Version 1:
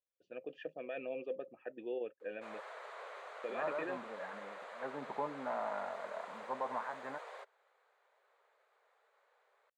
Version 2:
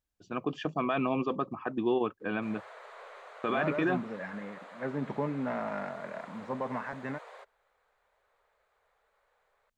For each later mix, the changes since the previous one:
first voice: remove vowel filter e; second voice: remove band-pass 870 Hz, Q 1.6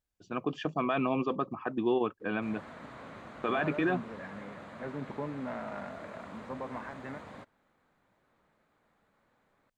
second voice -5.0 dB; background: remove steep high-pass 410 Hz 72 dB/oct

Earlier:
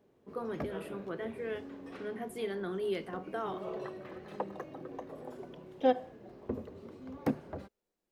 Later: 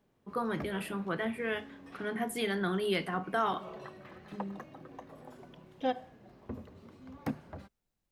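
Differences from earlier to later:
first voice +10.5 dB; second voice: remove Chebyshev high-pass 180 Hz, order 10; master: add bell 420 Hz -9.5 dB 1.2 oct

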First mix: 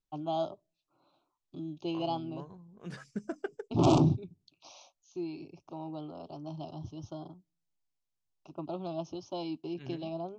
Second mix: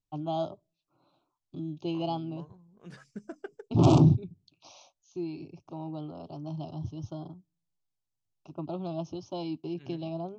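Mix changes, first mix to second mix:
first voice: add bell 110 Hz +7.5 dB 2.1 oct; second voice -4.5 dB

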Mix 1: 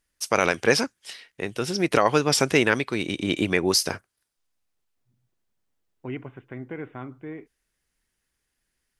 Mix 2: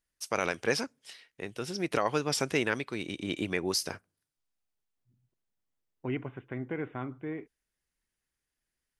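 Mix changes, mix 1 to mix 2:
first voice -9.5 dB; reverb: on, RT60 0.55 s

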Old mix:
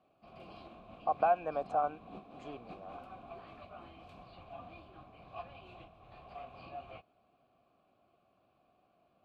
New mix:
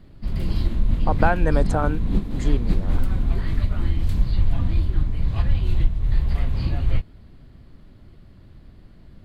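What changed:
background: add low shelf 67 Hz +10 dB; master: remove vowel filter a

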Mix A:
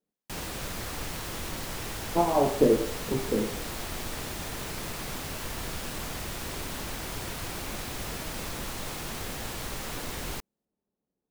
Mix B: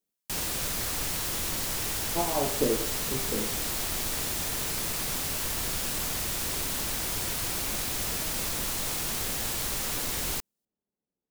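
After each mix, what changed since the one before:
speech -6.0 dB; master: add high shelf 3800 Hz +10.5 dB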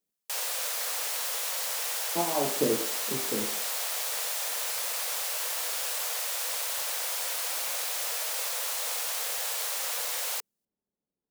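background: add brick-wall FIR high-pass 450 Hz

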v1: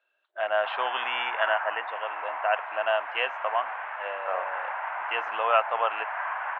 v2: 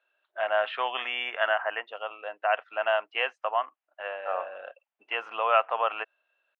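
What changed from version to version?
background: muted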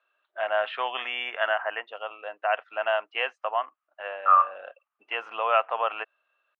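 second voice: add resonant high-pass 1200 Hz, resonance Q 14

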